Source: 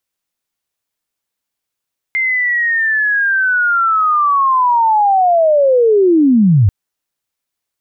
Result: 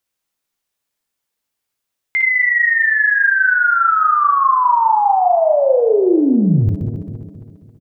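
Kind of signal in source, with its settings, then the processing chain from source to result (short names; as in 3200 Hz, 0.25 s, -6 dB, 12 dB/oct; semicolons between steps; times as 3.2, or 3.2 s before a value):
chirp linear 2100 Hz -> 89 Hz -12.5 dBFS -> -6 dBFS 4.54 s
regenerating reverse delay 0.135 s, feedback 65%, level -13 dB; compressor, threshold -12 dBFS; on a send: early reflections 56 ms -6.5 dB, 67 ms -11.5 dB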